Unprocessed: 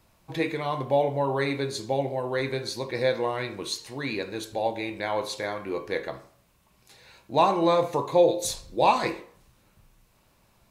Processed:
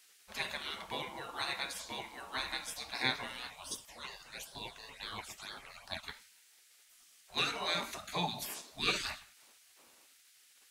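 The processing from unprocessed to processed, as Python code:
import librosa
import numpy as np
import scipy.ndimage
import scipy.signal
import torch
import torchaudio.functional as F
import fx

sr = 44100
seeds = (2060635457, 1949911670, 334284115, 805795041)

y = fx.phaser_stages(x, sr, stages=8, low_hz=410.0, high_hz=2300.0, hz=fx.line((3.49, 0.87), (6.02, 3.3)), feedback_pct=10, at=(3.49, 6.02), fade=0.02)
y = fx.spec_gate(y, sr, threshold_db=-20, keep='weak')
y = fx.dmg_noise_band(y, sr, seeds[0], low_hz=1600.0, high_hz=11000.0, level_db=-69.0)
y = y * 10.0 ** (3.0 / 20.0)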